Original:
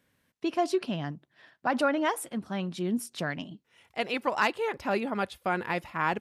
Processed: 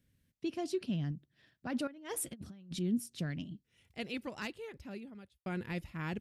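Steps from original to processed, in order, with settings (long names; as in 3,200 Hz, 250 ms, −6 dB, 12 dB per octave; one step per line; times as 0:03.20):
guitar amp tone stack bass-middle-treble 10-0-1
0:01.87–0:02.79: compressor whose output falls as the input rises −57 dBFS, ratio −0.5
0:04.04–0:05.46: fade out
level +14.5 dB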